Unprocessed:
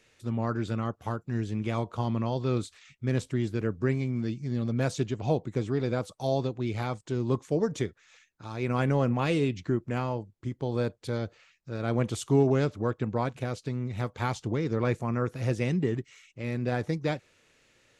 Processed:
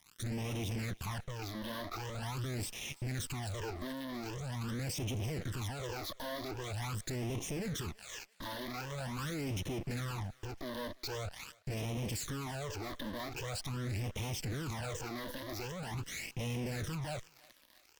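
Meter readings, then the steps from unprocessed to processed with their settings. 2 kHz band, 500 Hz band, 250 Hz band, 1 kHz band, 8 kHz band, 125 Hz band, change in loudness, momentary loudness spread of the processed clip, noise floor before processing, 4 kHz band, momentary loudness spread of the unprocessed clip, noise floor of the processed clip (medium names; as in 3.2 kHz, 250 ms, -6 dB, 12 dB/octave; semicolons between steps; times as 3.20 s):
-5.0 dB, -13.5 dB, -12.0 dB, -9.0 dB, +3.0 dB, -9.0 dB, -9.5 dB, 4 LU, -66 dBFS, +1.0 dB, 8 LU, -64 dBFS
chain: treble shelf 2.2 kHz +4.5 dB; fuzz box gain 46 dB, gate -55 dBFS; valve stage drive 31 dB, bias 0.75; phase shifter stages 12, 0.44 Hz, lowest notch 130–1500 Hz; on a send: thinning echo 335 ms, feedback 65%, high-pass 890 Hz, level -20.5 dB; on the sum: trim -5 dB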